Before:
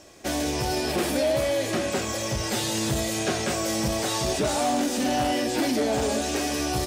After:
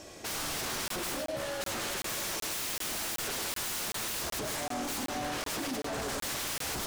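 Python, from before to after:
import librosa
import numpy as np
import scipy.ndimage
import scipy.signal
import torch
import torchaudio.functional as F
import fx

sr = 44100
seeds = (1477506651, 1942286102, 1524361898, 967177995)

y = fx.highpass(x, sr, hz=310.0, slope=24, at=(1.83, 4.0))
y = fx.over_compress(y, sr, threshold_db=-27.0, ratio=-0.5)
y = 10.0 ** (-31.0 / 20.0) * (np.abs((y / 10.0 ** (-31.0 / 20.0) + 3.0) % 4.0 - 2.0) - 1.0)
y = y + 10.0 ** (-7.5 / 20.0) * np.pad(y, (int(102 * sr / 1000.0), 0))[:len(y)]
y = fx.buffer_crackle(y, sr, first_s=0.88, period_s=0.38, block=1024, kind='zero')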